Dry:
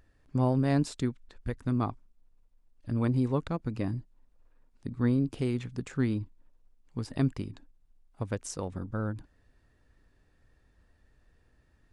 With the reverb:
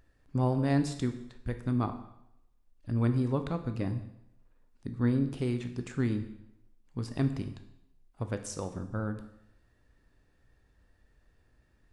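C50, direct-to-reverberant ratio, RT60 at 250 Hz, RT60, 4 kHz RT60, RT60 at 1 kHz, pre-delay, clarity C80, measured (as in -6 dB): 10.5 dB, 7.5 dB, 0.80 s, 0.80 s, 0.75 s, 0.80 s, 6 ms, 13.0 dB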